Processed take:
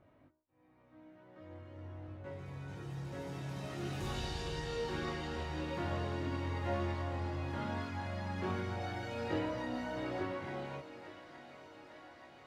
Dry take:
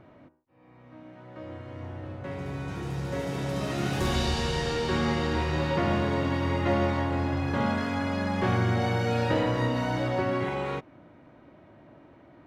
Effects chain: thinning echo 871 ms, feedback 77%, high-pass 290 Hz, level -12.5 dB; chorus voices 6, 0.41 Hz, delay 21 ms, depth 1.9 ms; trim -9 dB

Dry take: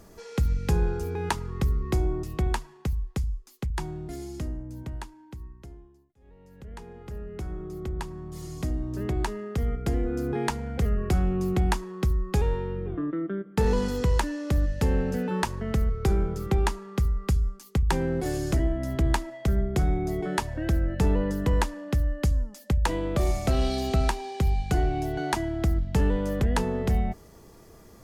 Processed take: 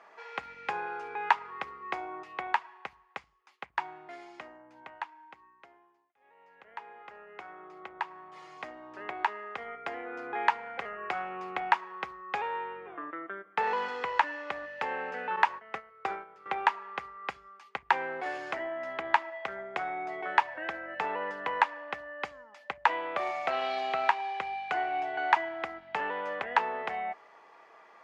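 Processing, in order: Chebyshev band-pass 820–2400 Hz, order 2; 15.36–16.46 s: gate -41 dBFS, range -13 dB; trim +6 dB

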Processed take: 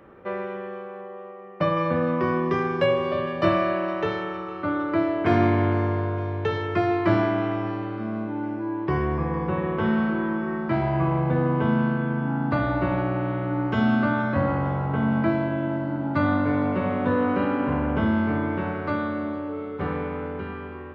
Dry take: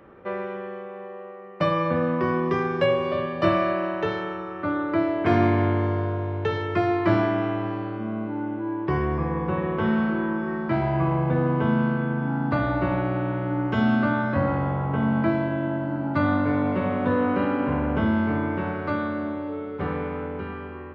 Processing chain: 1.01–1.77 s: low-pass 2.7 kHz 6 dB/octave; thinning echo 459 ms, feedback 64%, high-pass 1.1 kHz, level -16.5 dB

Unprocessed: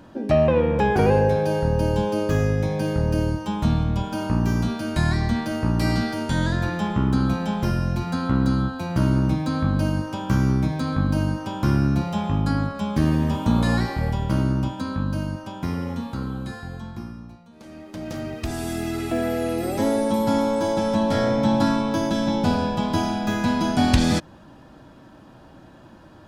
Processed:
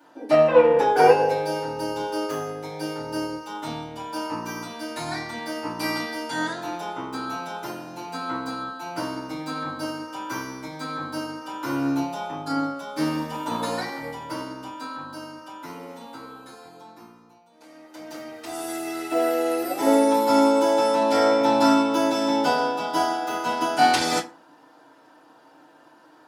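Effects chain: high-pass 540 Hz 12 dB/octave; treble shelf 9.7 kHz +5 dB; FDN reverb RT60 0.38 s, low-frequency decay 1.1×, high-frequency decay 0.6×, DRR -10 dB; upward expansion 1.5:1, over -25 dBFS; trim -2.5 dB

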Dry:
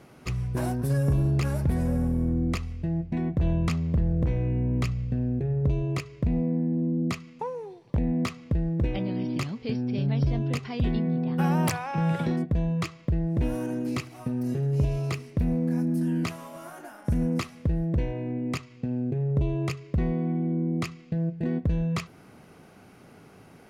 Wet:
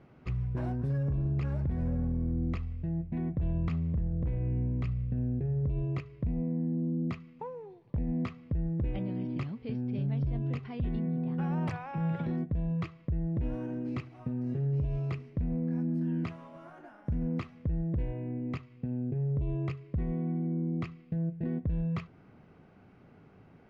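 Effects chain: low-pass 2.8 kHz 12 dB/octave; bass shelf 200 Hz +7.5 dB; peak limiter -16 dBFS, peak gain reduction 6 dB; trim -8.5 dB

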